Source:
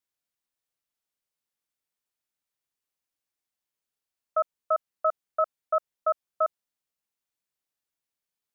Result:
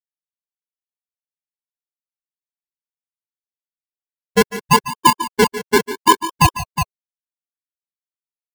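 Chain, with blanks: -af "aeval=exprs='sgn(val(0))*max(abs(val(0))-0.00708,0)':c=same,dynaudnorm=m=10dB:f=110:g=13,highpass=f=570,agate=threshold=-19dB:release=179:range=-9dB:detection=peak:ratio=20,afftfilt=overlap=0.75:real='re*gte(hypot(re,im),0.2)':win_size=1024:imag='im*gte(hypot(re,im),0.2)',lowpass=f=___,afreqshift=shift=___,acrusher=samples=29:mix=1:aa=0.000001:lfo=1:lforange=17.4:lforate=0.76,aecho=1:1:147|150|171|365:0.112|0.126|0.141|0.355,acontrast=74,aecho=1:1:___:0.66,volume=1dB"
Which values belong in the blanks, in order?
1100, 390, 1.9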